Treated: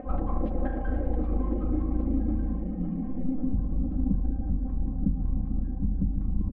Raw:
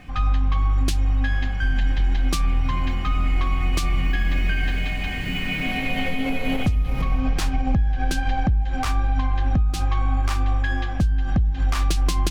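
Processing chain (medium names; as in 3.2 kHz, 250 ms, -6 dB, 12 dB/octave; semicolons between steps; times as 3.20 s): one-sided wavefolder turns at -19.5 dBFS; low-pass 4.3 kHz; bass shelf 190 Hz -8.5 dB; band-stop 860 Hz, Q 12; comb 3.8 ms, depth 96%; upward compressor, threshold -36 dBFS; low-pass sweep 580 Hz -> 170 Hz, 1.57–5.47 s; granular stretch 0.53×, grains 74 ms; feedback echo behind a band-pass 548 ms, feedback 76%, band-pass 510 Hz, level -9 dB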